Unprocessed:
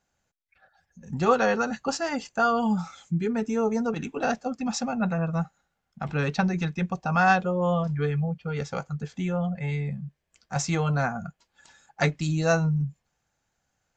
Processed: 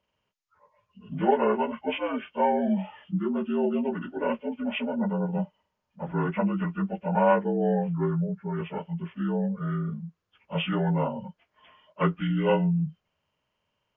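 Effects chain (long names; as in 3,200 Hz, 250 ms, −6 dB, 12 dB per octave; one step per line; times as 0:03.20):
partials spread apart or drawn together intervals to 75%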